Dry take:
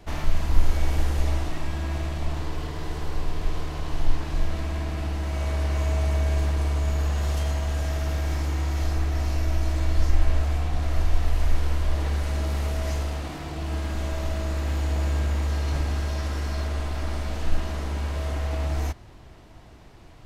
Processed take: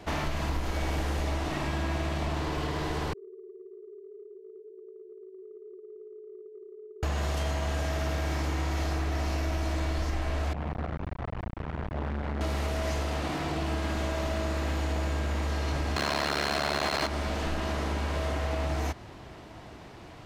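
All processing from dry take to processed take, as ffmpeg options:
ffmpeg -i in.wav -filter_complex "[0:a]asettb=1/sr,asplit=3[link_01][link_02][link_03];[link_01]atrim=end=3.134[link_04];[link_02]atrim=start=3.13:end=7.03,asetpts=PTS-STARTPTS,afade=type=in:duration=0.004:curve=qsin,afade=type=out:start_time=3.896:duration=0.004:curve=qsin,asuperpass=centerf=400:order=12:qfactor=5.2,acompressor=threshold=-48dB:ratio=6:attack=3.2:release=140:knee=1:detection=peak[link_05];[link_03]atrim=start=7.026[link_06];[link_04][link_05]acrossfade=duration=0.004:curve1=hsin:curve2=qsin[link_07];[link_07][link_06]acrossfade=duration=0.004:curve1=qsin:curve2=hsin,asettb=1/sr,asplit=3[link_08][link_09][link_10];[link_08]atrim=end=10.534[link_11];[link_09]atrim=start=10.53:end=12.41,asetpts=PTS-STARTPTS,afade=type=in:duration=0.004:curve=qsin,afade=type=out:start_time=1.876:duration=0.004:curve=qsin,lowpass=1800,acompressor=threshold=-21dB:ratio=3:attack=3.2:release=140:knee=1:detection=peak,asoftclip=type=hard:threshold=-29dB[link_12];[link_10]atrim=start=12.406[link_13];[link_11][link_12]acrossfade=duration=0.004:curve1=hsin:curve2=qsin[link_14];[link_14][link_13]acrossfade=duration=0.004:curve1=qsin:curve2=hsin,asettb=1/sr,asplit=3[link_15][link_16][link_17];[link_15]atrim=end=15.964[link_18];[link_16]atrim=start=15.96:end=17.07,asetpts=PTS-STARTPTS,afade=type=in:duration=0.004:curve=qsin,afade=type=out:start_time=1.106:duration=0.004:curve=qsin,aeval=exprs='val(0)+0.00891*sin(2*PI*4200*n/s)':channel_layout=same,aeval=exprs='max(val(0),0)':channel_layout=same,asplit=2[link_19][link_20];[link_20]highpass=frequency=720:poles=1,volume=37dB,asoftclip=type=tanh:threshold=-17dB[link_21];[link_19][link_21]amix=inputs=2:normalize=0,lowpass=frequency=3000:poles=1,volume=-6dB[link_22];[link_17]atrim=start=17.066[link_23];[link_18][link_22]acrossfade=duration=0.004:curve1=hsin:curve2=qsin[link_24];[link_24][link_23]acrossfade=duration=0.004:curve1=qsin:curve2=hsin,highpass=frequency=150:poles=1,highshelf=frequency=6600:gain=-7,acompressor=threshold=-32dB:ratio=6,volume=6dB" out.wav

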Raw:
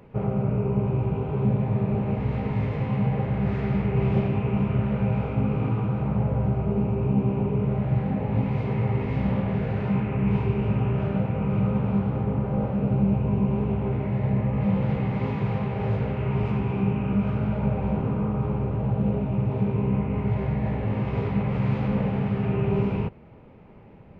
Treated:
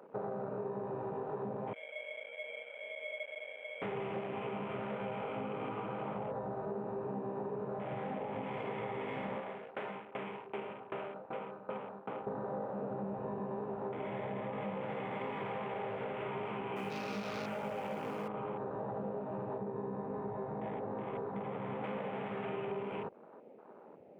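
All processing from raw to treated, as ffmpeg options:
ffmpeg -i in.wav -filter_complex "[0:a]asettb=1/sr,asplit=3[link_01][link_02][link_03];[link_01]atrim=end=1.734[link_04];[link_02]atrim=start=1.73:end=3.82,asetpts=PTS-STARTPTS,afade=type=in:duration=0.004:curve=qsin,afade=type=out:start_time=2.086:duration=0.004:curve=qsin,asuperpass=centerf=840:order=8:qfactor=4.4,aeval=exprs='val(0)*sin(2*PI*1400*n/s)':channel_layout=same[link_05];[link_03]atrim=start=3.816[link_06];[link_04][link_05]acrossfade=duration=0.004:curve1=hsin:curve2=qsin[link_07];[link_07][link_06]acrossfade=duration=0.004:curve1=qsin:curve2=hsin,asettb=1/sr,asplit=3[link_08][link_09][link_10];[link_08]atrim=end=9.384[link_11];[link_09]atrim=start=9.38:end=12.27,asetpts=PTS-STARTPTS,afade=type=in:duration=0.004:curve=qsin,afade=type=out:start_time=2.886:duration=0.004:curve=qsin,highpass=frequency=330:poles=1,aeval=exprs='val(0)*pow(10,-19*if(lt(mod(2.6*n/s,1),2*abs(2.6)/1000),1-mod(2.6*n/s,1)/(2*abs(2.6)/1000),(mod(2.6*n/s,1)-2*abs(2.6)/1000)/(1-2*abs(2.6)/1000))/20)':channel_layout=same[link_12];[link_10]atrim=start=12.266[link_13];[link_11][link_12]acrossfade=duration=0.004:curve1=hsin:curve2=qsin[link_14];[link_14][link_13]acrossfade=duration=0.004:curve1=qsin:curve2=hsin,asettb=1/sr,asplit=3[link_15][link_16][link_17];[link_15]atrim=end=16.764[link_18];[link_16]atrim=start=16.76:end=18.28,asetpts=PTS-STARTPTS,afade=type=in:duration=0.004:curve=qsin,afade=type=out:start_time=1.516:duration=0.004:curve=qsin,highshelf=frequency=2200:gain=7,acrusher=bits=7:dc=4:mix=0:aa=0.000001,asplit=2[link_19][link_20];[link_20]adelay=19,volume=-8dB[link_21];[link_19][link_21]amix=inputs=2:normalize=0,atrim=end_sample=67032[link_22];[link_17]atrim=start=18.276[link_23];[link_18][link_22]acrossfade=duration=0.004:curve1=hsin:curve2=qsin[link_24];[link_24][link_23]acrossfade=duration=0.004:curve1=qsin:curve2=hsin,asettb=1/sr,asplit=3[link_25][link_26][link_27];[link_25]atrim=end=19.584[link_28];[link_26]atrim=start=19.58:end=21.84,asetpts=PTS-STARTPTS,afade=type=in:duration=0.004:curve=qsin,afade=type=out:start_time=2.256:duration=0.004:curve=qsin,lowpass=frequency=1000:poles=1,bandreject=frequency=600:width=17[link_29];[link_27]atrim=start=21.836[link_30];[link_28][link_29]acrossfade=duration=0.004:curve1=hsin:curve2=qsin[link_31];[link_31][link_30]acrossfade=duration=0.004:curve1=qsin:curve2=hsin,highpass=440,acompressor=threshold=-38dB:ratio=6,afwtdn=0.00282,volume=2dB" out.wav

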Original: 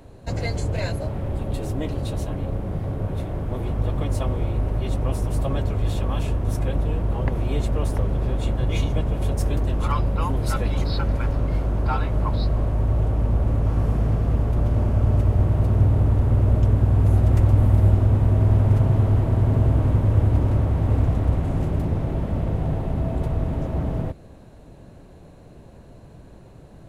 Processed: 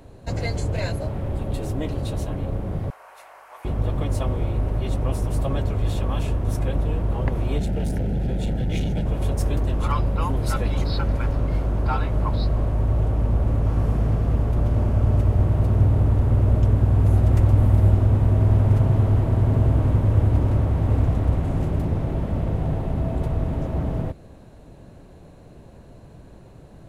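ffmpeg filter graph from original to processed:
ffmpeg -i in.wav -filter_complex "[0:a]asettb=1/sr,asplit=3[link_01][link_02][link_03];[link_01]atrim=end=2.904[link_04];[link_02]atrim=start=2.9:end=3.65,asetpts=PTS-STARTPTS,afade=type=in:duration=0.004:curve=qsin,afade=type=out:start_time=0.746:duration=0.004:curve=qsin,highpass=frequency=870:width=0.5412,highpass=frequency=870:width=1.3066,equalizer=frequency=3500:width=4:gain=-10.5,aeval=exprs='val(0)+0.0002*(sin(2*PI*50*n/s)+sin(2*PI*2*50*n/s)/2+sin(2*PI*3*50*n/s)/3+sin(2*PI*4*50*n/s)/4+sin(2*PI*5*50*n/s)/5)':channel_layout=same[link_05];[link_03]atrim=start=3.646[link_06];[link_04][link_05]acrossfade=duration=0.004:curve1=hsin:curve2=qsin[link_07];[link_07][link_06]acrossfade=duration=0.004:curve1=qsin:curve2=hsin,asettb=1/sr,asplit=3[link_08][link_09][link_10];[link_08]atrim=end=7.584[link_11];[link_09]atrim=start=7.58:end=9.06,asetpts=PTS-STARTPTS,afade=type=in:duration=0.004:curve=qsin,afade=type=out:start_time=1.476:duration=0.004:curve=qsin,equalizer=frequency=180:width=3.3:gain=12,asoftclip=type=hard:threshold=-20dB,asuperstop=centerf=1100:order=4:qfactor=2.1[link_12];[link_10]atrim=start=9.056[link_13];[link_11][link_12]acrossfade=duration=0.004:curve1=hsin:curve2=qsin[link_14];[link_14][link_13]acrossfade=duration=0.004:curve1=qsin:curve2=hsin" out.wav

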